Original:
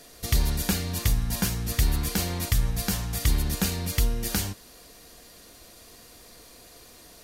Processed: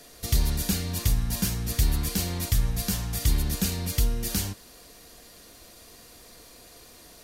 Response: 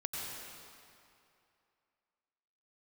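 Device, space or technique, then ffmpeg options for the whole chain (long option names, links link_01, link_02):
one-band saturation: -filter_complex "[0:a]acrossover=split=360|2900[link_01][link_02][link_03];[link_02]asoftclip=type=tanh:threshold=-37.5dB[link_04];[link_01][link_04][link_03]amix=inputs=3:normalize=0"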